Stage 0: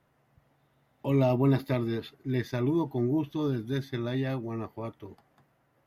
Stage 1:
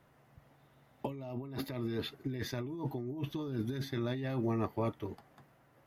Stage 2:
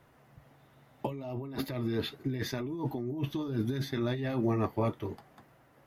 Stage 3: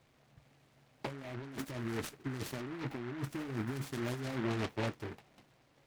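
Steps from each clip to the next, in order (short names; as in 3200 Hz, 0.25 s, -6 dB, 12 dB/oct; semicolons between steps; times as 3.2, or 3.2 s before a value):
negative-ratio compressor -35 dBFS, ratio -1; gain -2 dB
flange 0.72 Hz, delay 1.8 ms, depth 8.6 ms, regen -60%; gain +8 dB
noise-modulated delay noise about 1300 Hz, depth 0.17 ms; gain -6 dB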